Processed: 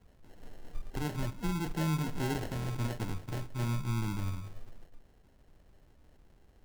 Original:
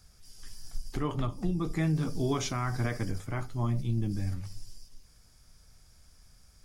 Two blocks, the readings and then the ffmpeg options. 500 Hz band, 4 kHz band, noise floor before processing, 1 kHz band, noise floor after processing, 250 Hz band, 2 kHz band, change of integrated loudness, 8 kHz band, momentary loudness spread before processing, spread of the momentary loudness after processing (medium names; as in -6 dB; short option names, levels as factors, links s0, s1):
-5.0 dB, -2.5 dB, -60 dBFS, -2.5 dB, -62 dBFS, -3.5 dB, -2.0 dB, -3.5 dB, -4.0 dB, 16 LU, 12 LU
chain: -filter_complex "[0:a]acrossover=split=300|3000[s0][s1][s2];[s1]acompressor=threshold=0.0158:ratio=1.5[s3];[s0][s3][s2]amix=inputs=3:normalize=0,acrusher=samples=37:mix=1:aa=0.000001,volume=0.708"